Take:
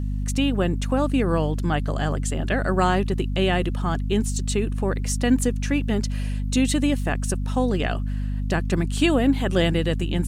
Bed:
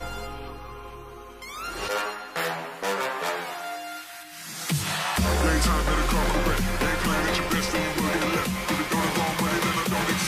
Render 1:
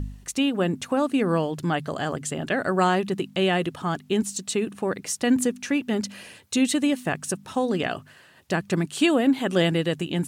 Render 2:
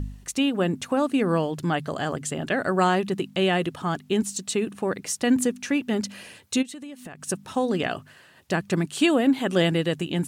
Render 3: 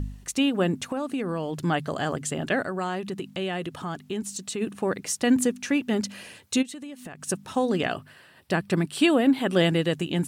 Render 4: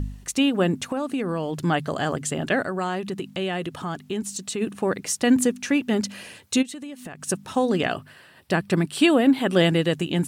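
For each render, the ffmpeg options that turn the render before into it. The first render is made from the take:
-af "bandreject=f=50:t=h:w=4,bandreject=f=100:t=h:w=4,bandreject=f=150:t=h:w=4,bandreject=f=200:t=h:w=4,bandreject=f=250:t=h:w=4"
-filter_complex "[0:a]asplit=3[a][b][c];[a]afade=t=out:st=6.61:d=0.02[d];[b]acompressor=threshold=-35dB:ratio=12:attack=3.2:release=140:knee=1:detection=peak,afade=t=in:st=6.61:d=0.02,afade=t=out:st=7.27:d=0.02[e];[c]afade=t=in:st=7.27:d=0.02[f];[d][e][f]amix=inputs=3:normalize=0"
-filter_complex "[0:a]asettb=1/sr,asplit=3[a][b][c];[a]atrim=end=0.754[d];[b]atrim=start=0.75:end=1.6,asetpts=PTS-STARTPTS,afade=t=in:d=0.004:c=qsin,afade=t=out:st=0.846:d=0.004:c=qsin,acompressor=threshold=-25dB:ratio=5:attack=3.2:release=140:knee=1:detection=peak[e];[c]atrim=start=1.596[f];[d][e]acrossfade=d=0.004:c1=hsin:c2=qsin[g];[g][f]acrossfade=d=0.004:c1=qsin:c2=hsin,asplit=3[h][i][j];[h]afade=t=out:st=2.62:d=0.02[k];[i]acompressor=threshold=-32dB:ratio=2:attack=3.2:release=140:knee=1:detection=peak,afade=t=in:st=2.62:d=0.02,afade=t=out:st=4.6:d=0.02[l];[j]afade=t=in:st=4.6:d=0.02[m];[k][l][m]amix=inputs=3:normalize=0,asettb=1/sr,asplit=3[n][o][p];[n]atrim=end=7.954[q];[o]atrim=start=7.95:end=9.63,asetpts=PTS-STARTPTS,afade=t=in:d=0.004:c=qsin,afade=t=out:st=1.676:d=0.004:c=qsin,equalizer=f=6.6k:w=5.9:g=-12[r];[p]atrim=start=9.626[s];[q][r]acrossfade=d=0.004:c1=hsin:c2=qsin[t];[t][s]acrossfade=d=0.004:c1=qsin:c2=hsin"
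-af "volume=2.5dB"

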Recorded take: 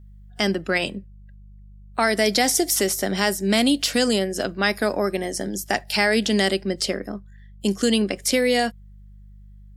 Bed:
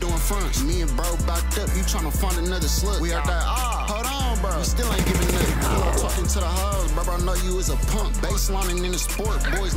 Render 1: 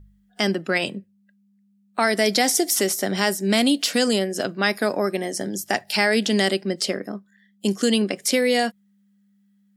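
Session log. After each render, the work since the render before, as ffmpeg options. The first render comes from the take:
-af "bandreject=f=50:t=h:w=4,bandreject=f=100:t=h:w=4,bandreject=f=150:t=h:w=4"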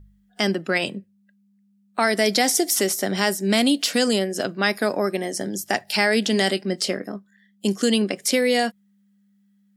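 -filter_complex "[0:a]asettb=1/sr,asplit=3[a][b][c];[a]atrim=end=6.324[d];[b]atrim=start=6.32:end=7.16,asetpts=PTS-STARTPTS,afade=t=in:d=0.004:c=qsin,afade=t=out:st=0.836:d=0.004:c=qsin,asplit=2[e][f];[f]adelay=22,volume=-11.5dB[g];[e][g]amix=inputs=2:normalize=0,atrim=end_sample=37044[h];[c]atrim=start=7.156[i];[d][h]acrossfade=d=0.004:c1=hsin:c2=qsin[j];[j][i]acrossfade=d=0.004:c1=qsin:c2=hsin"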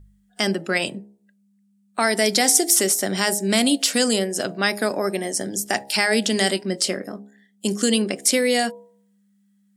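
-af "equalizer=f=8.6k:t=o:w=0.82:g=8,bandreject=f=68.5:t=h:w=4,bandreject=f=137:t=h:w=4,bandreject=f=205.5:t=h:w=4,bandreject=f=274:t=h:w=4,bandreject=f=342.5:t=h:w=4,bandreject=f=411:t=h:w=4,bandreject=f=479.5:t=h:w=4,bandreject=f=548:t=h:w=4,bandreject=f=616.5:t=h:w=4,bandreject=f=685:t=h:w=4,bandreject=f=753.5:t=h:w=4,bandreject=f=822:t=h:w=4,bandreject=f=890.5:t=h:w=4,bandreject=f=959:t=h:w=4"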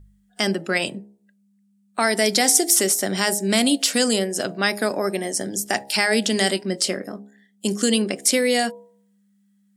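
-af anull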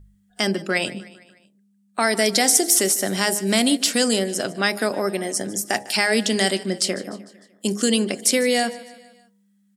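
-af "aecho=1:1:151|302|453|604:0.112|0.0595|0.0315|0.0167"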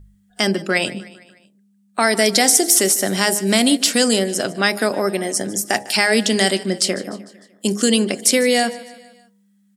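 -af "volume=3.5dB,alimiter=limit=-1dB:level=0:latency=1"

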